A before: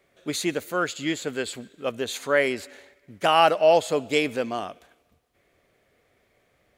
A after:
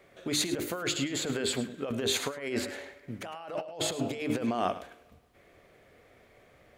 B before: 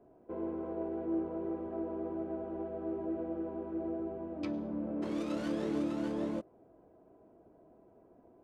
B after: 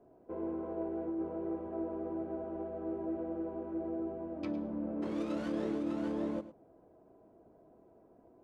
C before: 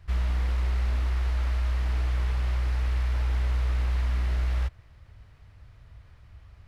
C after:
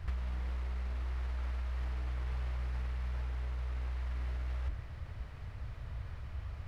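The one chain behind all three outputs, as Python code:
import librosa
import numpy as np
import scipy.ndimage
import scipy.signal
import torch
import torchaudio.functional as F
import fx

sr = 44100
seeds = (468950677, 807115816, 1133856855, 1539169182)

y = fx.high_shelf(x, sr, hz=2900.0, db=-6.0)
y = fx.hum_notches(y, sr, base_hz=50, count=8)
y = fx.over_compress(y, sr, threshold_db=-34.0, ratio=-1.0)
y = y + 10.0 ** (-14.5 / 20.0) * np.pad(y, (int(106 * sr / 1000.0), 0))[:len(y)]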